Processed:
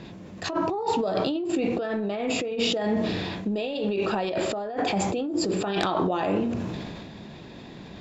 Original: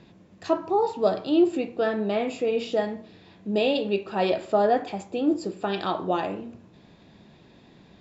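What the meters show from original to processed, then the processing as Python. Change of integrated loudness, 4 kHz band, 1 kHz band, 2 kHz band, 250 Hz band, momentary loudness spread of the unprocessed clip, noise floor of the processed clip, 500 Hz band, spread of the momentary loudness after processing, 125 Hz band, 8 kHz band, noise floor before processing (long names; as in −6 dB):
−1.5 dB, +4.0 dB, −1.0 dB, +2.0 dB, 0.0 dB, 11 LU, −43 dBFS, −2.5 dB, 16 LU, +5.5 dB, can't be measured, −54 dBFS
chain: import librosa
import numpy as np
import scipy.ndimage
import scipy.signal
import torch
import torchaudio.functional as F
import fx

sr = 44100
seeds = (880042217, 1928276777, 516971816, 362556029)

y = fx.over_compress(x, sr, threshold_db=-32.0, ratio=-1.0)
y = fx.fold_sine(y, sr, drive_db=4, ceiling_db=-8.0)
y = fx.sustainer(y, sr, db_per_s=25.0)
y = F.gain(torch.from_numpy(y), -4.5).numpy()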